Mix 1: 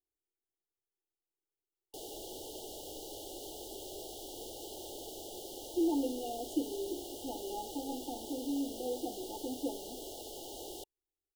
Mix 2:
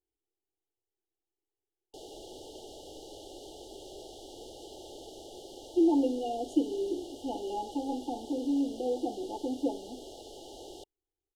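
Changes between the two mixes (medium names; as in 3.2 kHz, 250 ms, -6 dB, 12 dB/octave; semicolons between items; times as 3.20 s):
speech +6.5 dB; master: add distance through air 62 m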